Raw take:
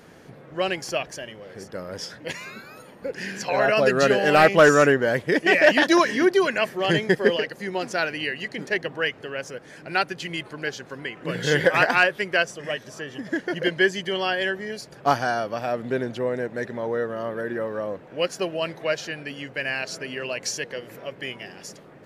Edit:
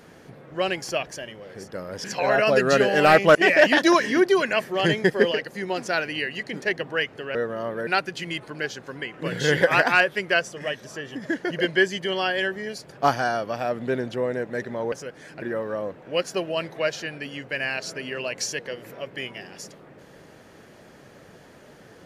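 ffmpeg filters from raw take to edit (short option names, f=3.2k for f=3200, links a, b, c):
-filter_complex "[0:a]asplit=7[a][b][c][d][e][f][g];[a]atrim=end=2.042[h];[b]atrim=start=3.338:end=4.652[i];[c]atrim=start=5.398:end=9.402[j];[d]atrim=start=16.948:end=17.472[k];[e]atrim=start=9.898:end=16.952[l];[f]atrim=start=9.398:end=9.902[m];[g]atrim=start=17.468[n];[h][i]acrossfade=d=0.004:c1=hsin:c2=hsin[o];[o][j]acrossfade=d=0.004:c1=hsin:c2=hsin[p];[p][k]acrossfade=d=0.004:c1=hsin:c2=hsin[q];[q][l]acrossfade=d=0.004:c1=hsin:c2=hsin[r];[r][m]acrossfade=d=0.004:c1=hsin:c2=hsin[s];[s][n]acrossfade=d=0.004:c1=hsin:c2=hsin"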